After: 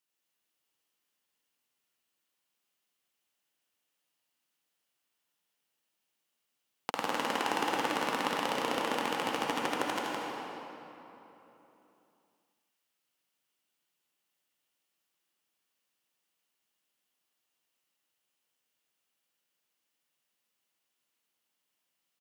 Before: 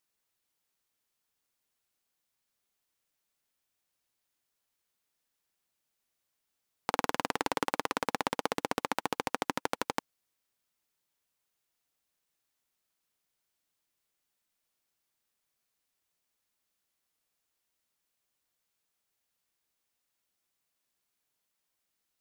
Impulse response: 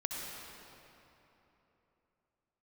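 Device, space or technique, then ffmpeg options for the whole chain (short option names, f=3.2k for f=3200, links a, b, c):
PA in a hall: -filter_complex "[0:a]highpass=140,equalizer=f=2.9k:t=o:w=0.27:g=7,aecho=1:1:162:0.596[a];[1:a]atrim=start_sample=2205[b];[a][b]afir=irnorm=-1:irlink=0,volume=-3dB"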